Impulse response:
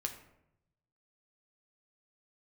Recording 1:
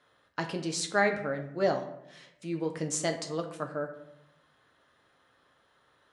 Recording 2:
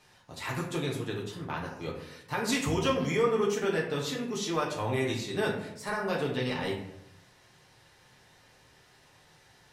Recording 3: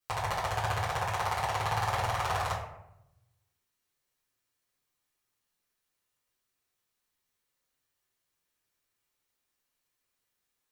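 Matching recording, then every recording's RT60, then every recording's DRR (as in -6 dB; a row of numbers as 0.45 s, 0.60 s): 1; 0.80 s, 0.80 s, 0.80 s; 3.5 dB, -3.5 dB, -10.5 dB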